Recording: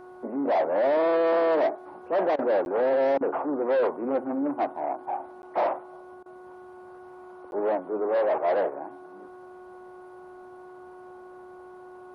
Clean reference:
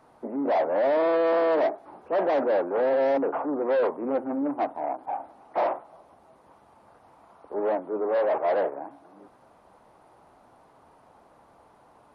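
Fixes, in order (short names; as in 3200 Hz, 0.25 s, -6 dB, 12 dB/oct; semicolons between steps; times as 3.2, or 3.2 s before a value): de-hum 365.8 Hz, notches 4; interpolate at 2.65/5.42/7.51, 11 ms; interpolate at 2.36/3.18/6.23, 27 ms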